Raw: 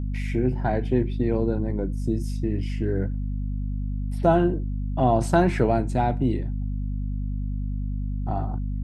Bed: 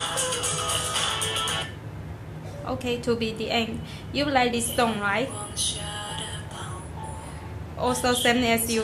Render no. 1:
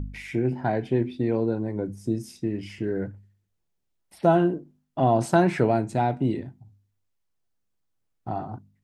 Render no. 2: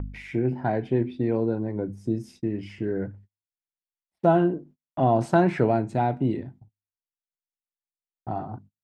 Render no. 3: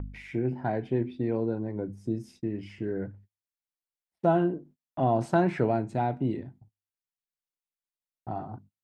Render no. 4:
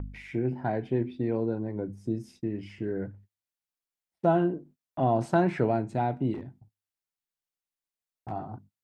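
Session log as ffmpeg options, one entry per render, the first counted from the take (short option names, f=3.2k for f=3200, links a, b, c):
-af "bandreject=f=50:t=h:w=4,bandreject=f=100:t=h:w=4,bandreject=f=150:t=h:w=4,bandreject=f=200:t=h:w=4,bandreject=f=250:t=h:w=4"
-af "agate=range=-34dB:threshold=-47dB:ratio=16:detection=peak,lowpass=f=2.8k:p=1"
-af "volume=-4dB"
-filter_complex "[0:a]asplit=3[a][b][c];[a]afade=t=out:st=6.33:d=0.02[d];[b]volume=32dB,asoftclip=hard,volume=-32dB,afade=t=in:st=6.33:d=0.02,afade=t=out:st=8.3:d=0.02[e];[c]afade=t=in:st=8.3:d=0.02[f];[d][e][f]amix=inputs=3:normalize=0"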